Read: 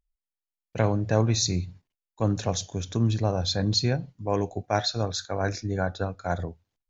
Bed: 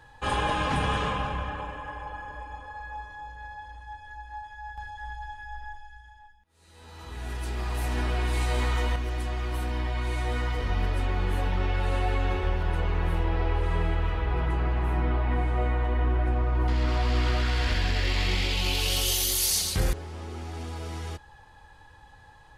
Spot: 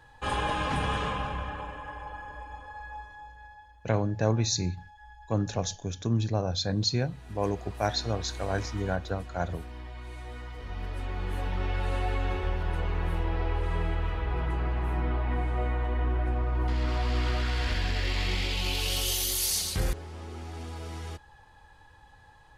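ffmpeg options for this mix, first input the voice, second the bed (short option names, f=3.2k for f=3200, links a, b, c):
-filter_complex "[0:a]adelay=3100,volume=-3dB[a];[1:a]volume=7dB,afade=t=out:st=2.86:d=0.91:silence=0.316228,afade=t=in:st=10.54:d=1.2:silence=0.334965[b];[a][b]amix=inputs=2:normalize=0"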